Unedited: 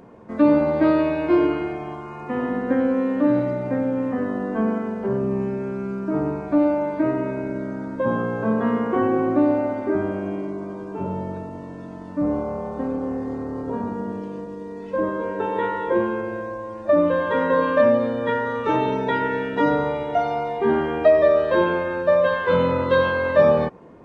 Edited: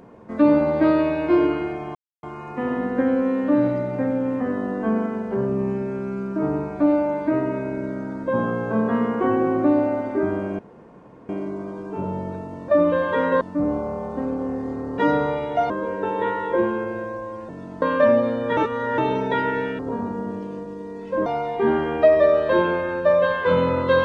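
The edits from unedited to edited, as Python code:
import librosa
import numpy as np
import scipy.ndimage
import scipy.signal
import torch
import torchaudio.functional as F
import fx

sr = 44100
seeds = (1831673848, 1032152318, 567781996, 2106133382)

y = fx.edit(x, sr, fx.insert_silence(at_s=1.95, length_s=0.28),
    fx.insert_room_tone(at_s=10.31, length_s=0.7),
    fx.swap(start_s=11.7, length_s=0.33, other_s=16.86, other_length_s=0.73),
    fx.swap(start_s=13.6, length_s=1.47, other_s=19.56, other_length_s=0.72),
    fx.reverse_span(start_s=18.34, length_s=0.41), tone=tone)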